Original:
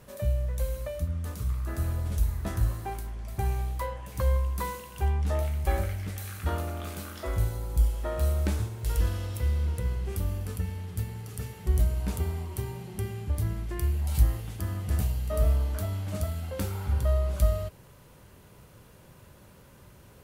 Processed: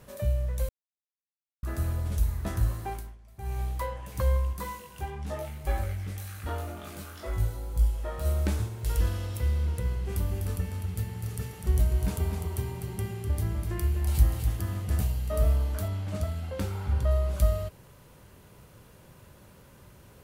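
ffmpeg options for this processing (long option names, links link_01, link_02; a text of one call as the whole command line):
ffmpeg -i in.wav -filter_complex "[0:a]asplit=3[link_01][link_02][link_03];[link_01]afade=type=out:start_time=4.52:duration=0.02[link_04];[link_02]flanger=delay=19:depth=2.7:speed=1.9,afade=type=in:start_time=4.52:duration=0.02,afade=type=out:start_time=8.24:duration=0.02[link_05];[link_03]afade=type=in:start_time=8.24:duration=0.02[link_06];[link_04][link_05][link_06]amix=inputs=3:normalize=0,asettb=1/sr,asplit=3[link_07][link_08][link_09];[link_07]atrim=end=9.844[link_10];[link_08]atrim=start=9.84:end=14.85,asetpts=PTS-STARTPTS,afade=type=in:duration=0.004:curve=qsin,afade=type=out:start_time=5.006:duration=0.004:curve=qsin,aecho=1:1:250:0.501,atrim=end_sample=220941[link_11];[link_09]atrim=start=14.846[link_12];[link_10][link_11]acrossfade=duration=0.004:curve1=hsin:curve2=qsin[link_13];[link_13][link_12]acrossfade=duration=0.004:curve1=qsin:curve2=hsin,asettb=1/sr,asplit=3[link_14][link_15][link_16];[link_14]atrim=end=15.884[link_17];[link_15]atrim=start=15.88:end=17.11,asetpts=PTS-STARTPTS,afade=type=in:duration=0.004:curve=qsin,afade=type=out:start_time=1.226:duration=0.004:curve=qsin,highshelf=frequency=9100:gain=-10.5[link_18];[link_16]atrim=start=17.106[link_19];[link_17][link_18]acrossfade=duration=0.004:curve1=hsin:curve2=qsin[link_20];[link_20][link_19]acrossfade=duration=0.004:curve1=qsin:curve2=hsin,asplit=5[link_21][link_22][link_23][link_24][link_25];[link_21]atrim=end=0.69,asetpts=PTS-STARTPTS,afade=type=out:start_time=0.686:duration=0.004:curve=hsin[link_26];[link_22]atrim=start=0.69:end=1.63,asetpts=PTS-STARTPTS,volume=0[link_27];[link_23]atrim=start=1.63:end=3.18,asetpts=PTS-STARTPTS,afade=type=in:duration=0.004:curve=hsin,afade=type=out:start_time=1.3:duration=0.25:silence=0.16788[link_28];[link_24]atrim=start=3.18:end=3.38,asetpts=PTS-STARTPTS,volume=-15.5dB[link_29];[link_25]atrim=start=3.38,asetpts=PTS-STARTPTS,afade=type=in:duration=0.25:silence=0.16788[link_30];[link_26][link_27][link_28][link_29][link_30]concat=n=5:v=0:a=1" out.wav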